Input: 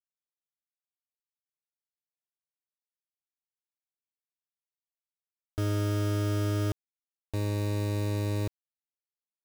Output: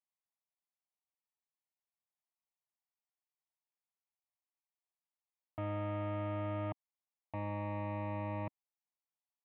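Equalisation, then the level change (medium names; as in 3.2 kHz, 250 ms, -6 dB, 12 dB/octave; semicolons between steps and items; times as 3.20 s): distance through air 120 m; cabinet simulation 250–2000 Hz, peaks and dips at 270 Hz -5 dB, 480 Hz -6 dB, 1.5 kHz -4 dB; static phaser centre 1.5 kHz, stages 6; +4.5 dB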